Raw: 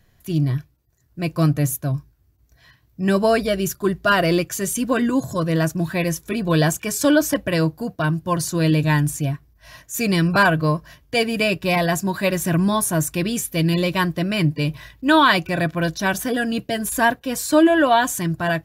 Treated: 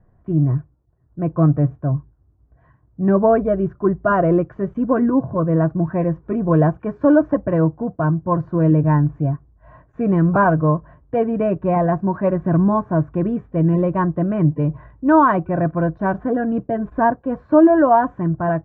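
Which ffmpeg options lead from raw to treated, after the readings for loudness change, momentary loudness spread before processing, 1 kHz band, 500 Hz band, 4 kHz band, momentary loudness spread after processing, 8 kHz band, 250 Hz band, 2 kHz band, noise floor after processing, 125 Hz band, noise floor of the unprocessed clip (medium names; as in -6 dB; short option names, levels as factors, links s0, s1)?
+1.5 dB, 9 LU, +2.0 dB, +3.0 dB, under -30 dB, 9 LU, under -40 dB, +3.0 dB, -8.0 dB, -57 dBFS, +3.0 dB, -60 dBFS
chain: -af "lowpass=f=1200:w=0.5412,lowpass=f=1200:w=1.3066,volume=1.41"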